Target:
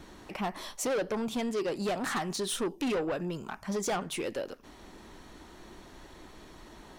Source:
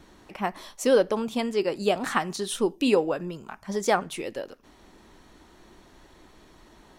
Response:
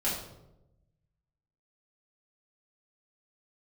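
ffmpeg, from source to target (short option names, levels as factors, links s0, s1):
-filter_complex "[0:a]asplit=2[s0][s1];[s1]acompressor=threshold=0.0251:ratio=6,volume=1[s2];[s0][s2]amix=inputs=2:normalize=0,asoftclip=type=tanh:threshold=0.0631,volume=0.708"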